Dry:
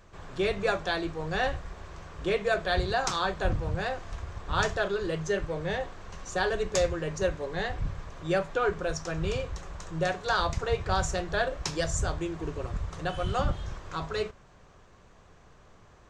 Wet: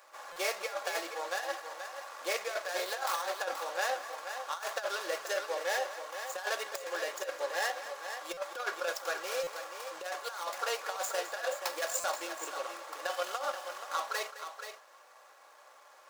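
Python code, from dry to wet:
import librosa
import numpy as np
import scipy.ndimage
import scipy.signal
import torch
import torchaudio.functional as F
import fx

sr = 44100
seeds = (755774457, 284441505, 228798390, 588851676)

y = scipy.ndimage.median_filter(x, 15, mode='constant')
y = scipy.signal.sosfilt(scipy.signal.butter(4, 600.0, 'highpass', fs=sr, output='sos'), y)
y = fx.high_shelf(y, sr, hz=3800.0, db=9.5)
y = y + 0.49 * np.pad(y, (int(3.6 * sr / 1000.0), 0))[:len(y)]
y = fx.over_compress(y, sr, threshold_db=-33.0, ratio=-0.5)
y = fx.echo_multitap(y, sr, ms=(212, 479), db=(-14.5, -9.0))
y = fx.buffer_glitch(y, sr, at_s=(0.32, 8.33, 9.43, 12.0), block=256, repeats=6)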